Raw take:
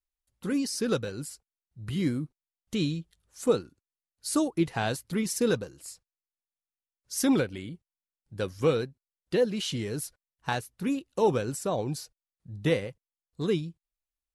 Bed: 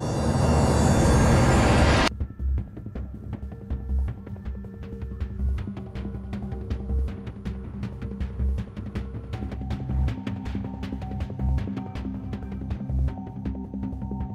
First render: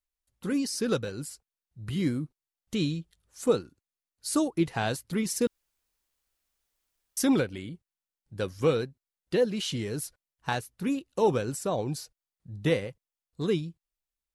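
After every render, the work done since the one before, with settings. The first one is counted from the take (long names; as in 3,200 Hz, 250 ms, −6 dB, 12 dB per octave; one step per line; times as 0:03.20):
0:05.47–0:07.17: fill with room tone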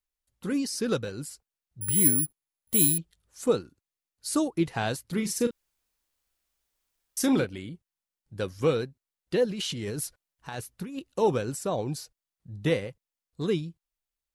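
0:01.81–0:02.98: bad sample-rate conversion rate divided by 4×, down filtered, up zero stuff
0:05.08–0:07.45: double-tracking delay 38 ms −10 dB
0:09.46–0:11.14: compressor whose output falls as the input rises −34 dBFS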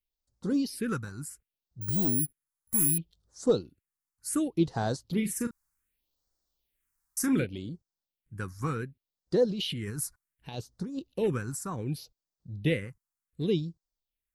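hard clipping −15 dBFS, distortion −15 dB
all-pass phaser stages 4, 0.67 Hz, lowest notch 490–2,600 Hz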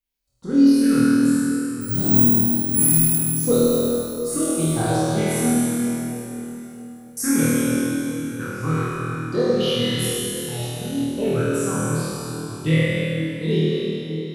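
flutter between parallel walls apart 4.3 metres, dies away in 1.2 s
dense smooth reverb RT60 3.7 s, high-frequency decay 0.85×, DRR −4.5 dB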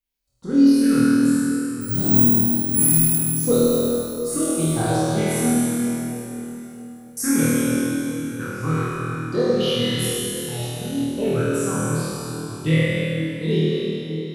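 no processing that can be heard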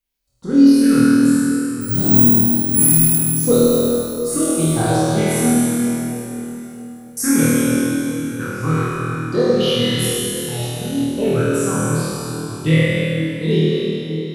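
level +4 dB
brickwall limiter −1 dBFS, peak gain reduction 1 dB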